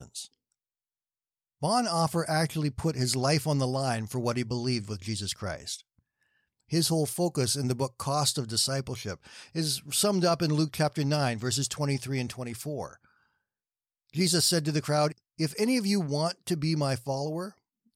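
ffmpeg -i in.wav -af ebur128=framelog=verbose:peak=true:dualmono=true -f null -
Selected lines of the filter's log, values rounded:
Integrated loudness:
  I:         -25.5 LUFS
  Threshold: -35.9 LUFS
Loudness range:
  LRA:         3.7 LU
  Threshold: -46.1 LUFS
  LRA low:   -28.5 LUFS
  LRA high:  -24.8 LUFS
True peak:
  Peak:      -12.8 dBFS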